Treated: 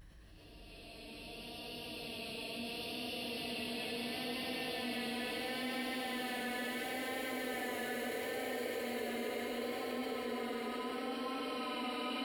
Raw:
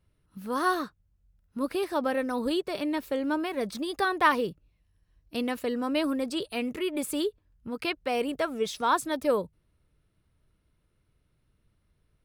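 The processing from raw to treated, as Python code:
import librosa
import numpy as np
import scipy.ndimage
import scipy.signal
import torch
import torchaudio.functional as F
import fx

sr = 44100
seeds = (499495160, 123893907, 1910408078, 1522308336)

y = fx.hpss(x, sr, part='harmonic', gain_db=-12)
y = fx.paulstretch(y, sr, seeds[0], factor=16.0, window_s=0.5, from_s=5.1)
y = fx.vibrato(y, sr, rate_hz=0.73, depth_cents=38.0)
y = fx.env_flatten(y, sr, amount_pct=50)
y = F.gain(torch.from_numpy(y), -3.0).numpy()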